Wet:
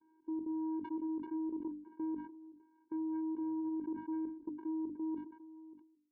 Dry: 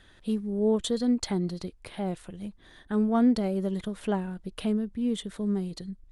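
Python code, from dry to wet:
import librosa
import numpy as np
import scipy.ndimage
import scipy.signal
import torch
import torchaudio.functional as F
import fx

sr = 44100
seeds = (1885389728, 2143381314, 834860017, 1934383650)

y = fx.fade_out_tail(x, sr, length_s=1.57)
y = fx.peak_eq(y, sr, hz=160.0, db=5.0, octaves=0.61)
y = fx.vocoder(y, sr, bands=4, carrier='square', carrier_hz=318.0)
y = fx.level_steps(y, sr, step_db=16)
y = scipy.signal.sosfilt(scipy.signal.butter(4, 1300.0, 'lowpass', fs=sr, output='sos'), y)
y = fx.hum_notches(y, sr, base_hz=50, count=6)
y = fx.sustainer(y, sr, db_per_s=89.0)
y = y * librosa.db_to_amplitude(-4.5)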